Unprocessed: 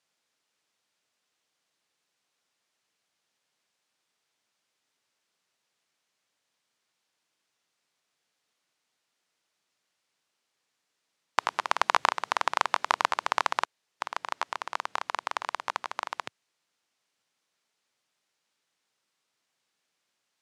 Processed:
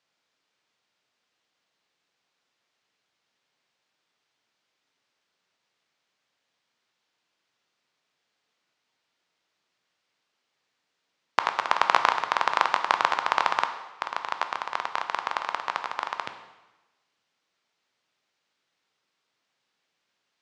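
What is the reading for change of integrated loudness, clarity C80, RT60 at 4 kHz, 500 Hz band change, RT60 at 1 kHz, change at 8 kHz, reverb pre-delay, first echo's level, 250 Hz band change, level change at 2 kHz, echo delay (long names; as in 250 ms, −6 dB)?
+3.0 dB, 11.5 dB, 1.0 s, +3.0 dB, 1.1 s, −2.5 dB, 6 ms, no echo audible, +3.5 dB, +3.0 dB, no echo audible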